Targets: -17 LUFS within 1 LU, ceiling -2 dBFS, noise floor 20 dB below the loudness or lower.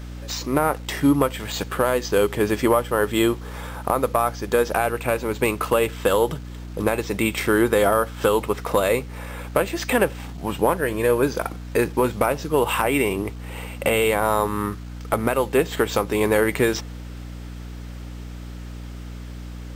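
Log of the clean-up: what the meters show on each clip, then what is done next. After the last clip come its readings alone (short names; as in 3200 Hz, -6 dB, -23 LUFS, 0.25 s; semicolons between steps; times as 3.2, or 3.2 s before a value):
hum 60 Hz; harmonics up to 300 Hz; hum level -32 dBFS; loudness -22.0 LUFS; peak -5.5 dBFS; loudness target -17.0 LUFS
-> de-hum 60 Hz, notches 5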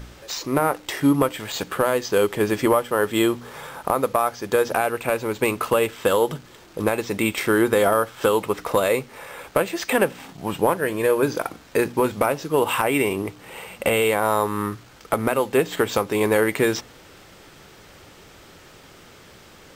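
hum none; loudness -22.0 LUFS; peak -5.5 dBFS; loudness target -17.0 LUFS
-> gain +5 dB; limiter -2 dBFS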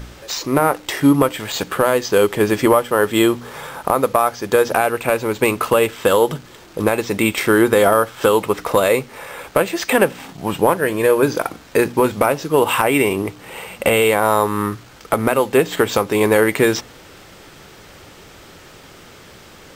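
loudness -17.5 LUFS; peak -2.0 dBFS; noise floor -43 dBFS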